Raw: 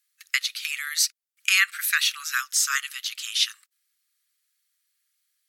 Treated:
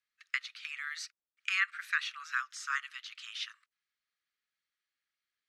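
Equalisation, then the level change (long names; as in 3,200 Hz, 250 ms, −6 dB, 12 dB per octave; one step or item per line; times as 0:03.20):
dynamic equaliser 3,700 Hz, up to −6 dB, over −34 dBFS, Q 0.73
head-to-tape spacing loss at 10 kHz 30 dB
0.0 dB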